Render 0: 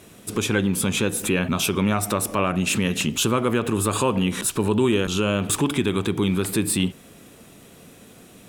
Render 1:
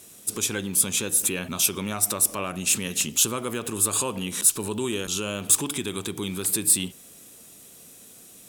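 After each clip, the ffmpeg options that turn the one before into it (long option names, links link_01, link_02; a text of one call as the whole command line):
ffmpeg -i in.wav -af "bass=frequency=250:gain=-3,treble=frequency=4000:gain=15,volume=-8dB" out.wav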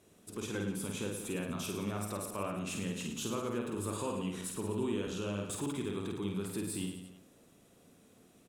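ffmpeg -i in.wav -filter_complex "[0:a]lowpass=frequency=1100:poles=1,asplit=2[link_01][link_02];[link_02]aecho=0:1:50|107.5|173.6|249.7|337.1:0.631|0.398|0.251|0.158|0.1[link_03];[link_01][link_03]amix=inputs=2:normalize=0,volume=-7dB" out.wav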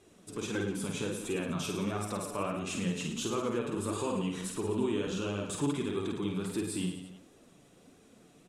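ffmpeg -i in.wav -af "lowpass=8900,flanger=delay=2.4:depth=4.6:regen=40:speed=1.5:shape=sinusoidal,volume=7.5dB" out.wav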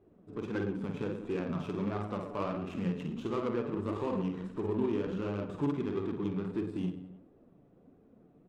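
ffmpeg -i in.wav -af "adynamicsmooth=sensitivity=3.5:basefreq=840" out.wav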